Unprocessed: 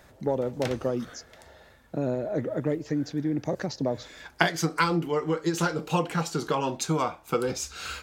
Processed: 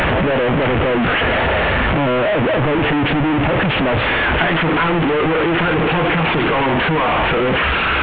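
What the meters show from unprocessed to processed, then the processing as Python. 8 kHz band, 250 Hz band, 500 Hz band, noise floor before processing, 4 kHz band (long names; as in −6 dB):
below −20 dB, +11.5 dB, +12.0 dB, −56 dBFS, +15.0 dB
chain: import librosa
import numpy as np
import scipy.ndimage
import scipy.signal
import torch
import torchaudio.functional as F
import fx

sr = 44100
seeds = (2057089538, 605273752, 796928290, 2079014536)

y = fx.delta_mod(x, sr, bps=16000, step_db=-13.0)
y = y * 10.0 ** (3.5 / 20.0)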